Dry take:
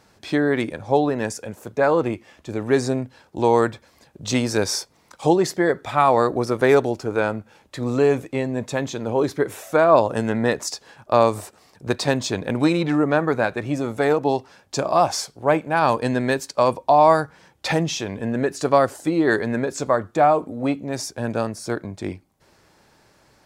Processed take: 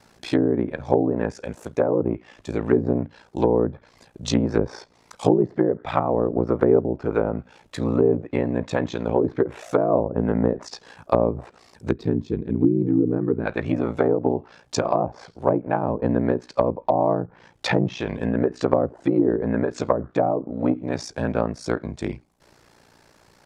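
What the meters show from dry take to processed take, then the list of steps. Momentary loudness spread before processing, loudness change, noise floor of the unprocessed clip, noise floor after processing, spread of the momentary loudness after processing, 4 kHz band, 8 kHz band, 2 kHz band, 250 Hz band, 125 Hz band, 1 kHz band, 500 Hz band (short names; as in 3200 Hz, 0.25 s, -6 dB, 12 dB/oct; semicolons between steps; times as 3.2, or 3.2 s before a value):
12 LU, -2.0 dB, -58 dBFS, -57 dBFS, 9 LU, -7.5 dB, -10.0 dB, -8.5 dB, +1.0 dB, +0.5 dB, -7.0 dB, -2.0 dB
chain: spectral gain 11.91–13.46, 460–12000 Hz -18 dB; ring modulator 29 Hz; treble ducked by the level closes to 450 Hz, closed at -18 dBFS; gain +4 dB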